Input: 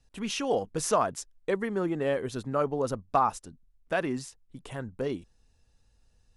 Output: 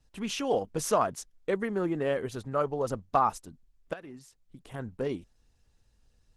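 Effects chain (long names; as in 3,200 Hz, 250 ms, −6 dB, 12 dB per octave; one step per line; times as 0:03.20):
0:02.25–0:02.88: dynamic equaliser 240 Hz, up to −6 dB, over −45 dBFS, Q 1.7
0:03.93–0:04.74: downward compressor 3 to 1, threshold −47 dBFS, peak gain reduction 17 dB
Opus 16 kbit/s 48,000 Hz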